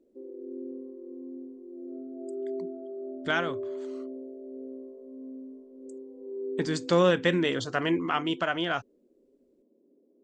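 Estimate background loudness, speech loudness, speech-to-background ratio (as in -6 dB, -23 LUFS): -40.0 LUFS, -27.5 LUFS, 12.5 dB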